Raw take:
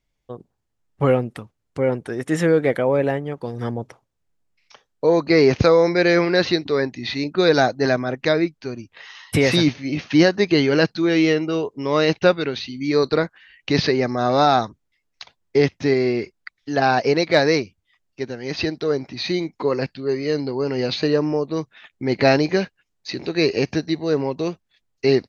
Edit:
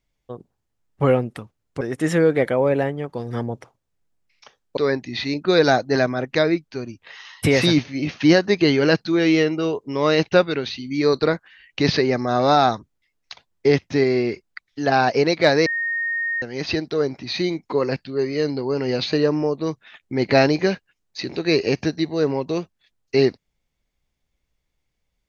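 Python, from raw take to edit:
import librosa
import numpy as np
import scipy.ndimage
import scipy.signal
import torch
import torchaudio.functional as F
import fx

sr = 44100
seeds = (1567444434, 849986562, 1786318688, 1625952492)

y = fx.edit(x, sr, fx.cut(start_s=1.81, length_s=0.28),
    fx.cut(start_s=5.05, length_s=1.62),
    fx.bleep(start_s=17.56, length_s=0.76, hz=1850.0, db=-21.0), tone=tone)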